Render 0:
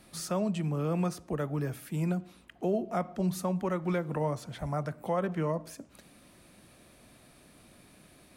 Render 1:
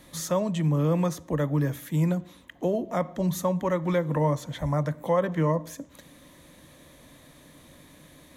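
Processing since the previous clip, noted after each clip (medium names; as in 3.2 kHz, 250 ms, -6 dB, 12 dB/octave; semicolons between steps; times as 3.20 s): rippled EQ curve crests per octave 1.1, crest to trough 8 dB; trim +4.5 dB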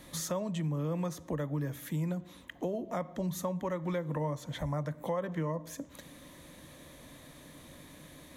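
compression 2.5:1, threshold -35 dBFS, peak gain reduction 11 dB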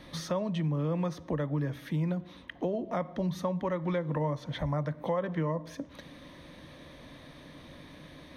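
Savitzky-Golay filter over 15 samples; trim +3 dB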